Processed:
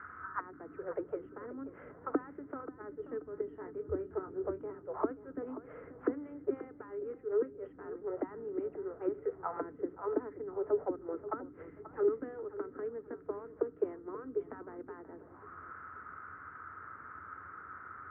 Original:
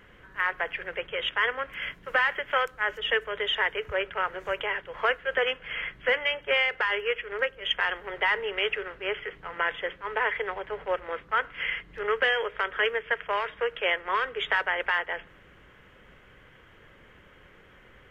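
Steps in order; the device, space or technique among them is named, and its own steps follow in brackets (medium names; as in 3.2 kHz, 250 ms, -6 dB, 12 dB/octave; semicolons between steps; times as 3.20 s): 3.45–4.70 s: doubling 24 ms -7 dB; envelope filter bass rig (touch-sensitive low-pass 280–1500 Hz down, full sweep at -26.5 dBFS; cabinet simulation 76–2000 Hz, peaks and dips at 87 Hz +9 dB, 130 Hz -5 dB, 200 Hz -5 dB, 280 Hz +6 dB, 540 Hz -9 dB, 1.3 kHz +10 dB); feedback echo behind a low-pass 533 ms, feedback 31%, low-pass 3.2 kHz, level -14 dB; trim -3.5 dB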